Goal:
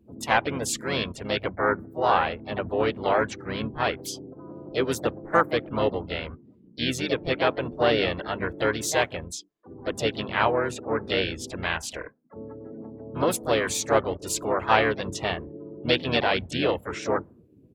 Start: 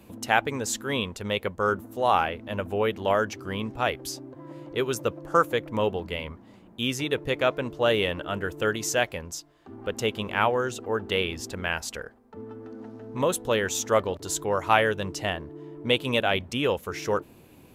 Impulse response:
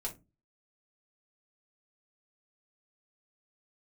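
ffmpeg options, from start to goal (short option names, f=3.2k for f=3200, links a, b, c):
-filter_complex "[0:a]acontrast=35,bandreject=f=50:t=h:w=6,bandreject=f=100:t=h:w=6,bandreject=f=150:t=h:w=6,bandreject=f=200:t=h:w=6,bandreject=f=250:t=h:w=6,afftdn=nr=29:nf=-38,asplit=4[a][b][c][d];[b]asetrate=29433,aresample=44100,atempo=1.49831,volume=-8dB[e];[c]asetrate=55563,aresample=44100,atempo=0.793701,volume=-7dB[f];[d]asetrate=66075,aresample=44100,atempo=0.66742,volume=-18dB[g];[a][e][f][g]amix=inputs=4:normalize=0,volume=-5.5dB"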